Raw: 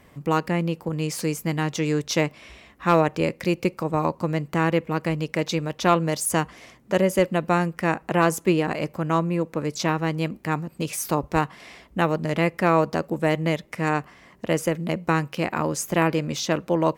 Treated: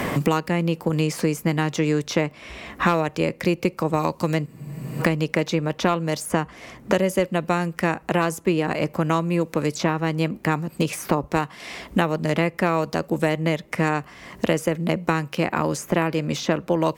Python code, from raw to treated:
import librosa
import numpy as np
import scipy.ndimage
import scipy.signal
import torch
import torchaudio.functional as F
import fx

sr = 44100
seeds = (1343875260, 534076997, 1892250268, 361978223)

y = fx.spec_freeze(x, sr, seeds[0], at_s=4.48, hold_s=0.53)
y = fx.band_squash(y, sr, depth_pct=100)